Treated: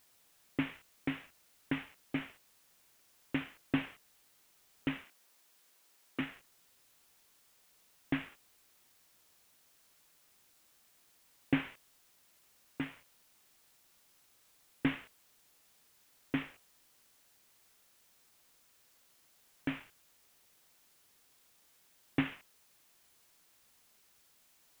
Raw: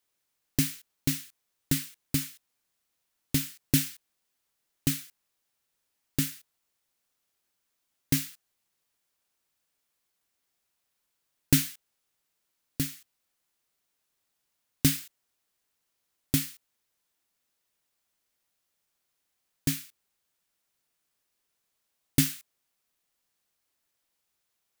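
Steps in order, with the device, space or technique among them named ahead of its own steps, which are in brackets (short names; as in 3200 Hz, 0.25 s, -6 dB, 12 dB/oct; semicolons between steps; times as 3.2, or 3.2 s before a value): army field radio (BPF 330–2900 Hz; CVSD 16 kbps; white noise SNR 23 dB); 5.04–6.2 Bessel high-pass 260 Hz, order 2; gain +1.5 dB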